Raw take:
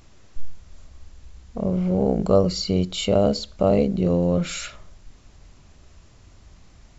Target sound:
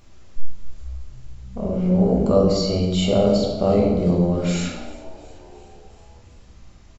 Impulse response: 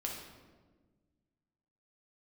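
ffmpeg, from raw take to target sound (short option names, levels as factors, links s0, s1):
-filter_complex "[0:a]asettb=1/sr,asplit=3[s0][s1][s2];[s0]atrim=end=3.754[s3];[s1]atrim=start=3.75:end=4.32,asetpts=PTS-STARTPTS,afade=t=in:d=0.004:c=qsin,afade=t=out:st=0.566:d=0.004:c=qsin,bandreject=f=2800:w=6.5[s4];[s2]atrim=start=4.316[s5];[s3][s4]acrossfade=d=0.004:c1=hsin:c2=qsin[s6];[s6][s5]acrossfade=d=0.004:c1=qsin:c2=hsin,asplit=6[s7][s8][s9][s10][s11][s12];[s8]adelay=355,afreqshift=62,volume=0.0891[s13];[s9]adelay=710,afreqshift=124,volume=0.0569[s14];[s10]adelay=1065,afreqshift=186,volume=0.0363[s15];[s11]adelay=1420,afreqshift=248,volume=0.0234[s16];[s12]adelay=1775,afreqshift=310,volume=0.015[s17];[s7][s13][s14][s15][s16][s17]amix=inputs=6:normalize=0[s18];[1:a]atrim=start_sample=2205,afade=t=out:st=0.42:d=0.01,atrim=end_sample=18963[s19];[s18][s19]afir=irnorm=-1:irlink=0"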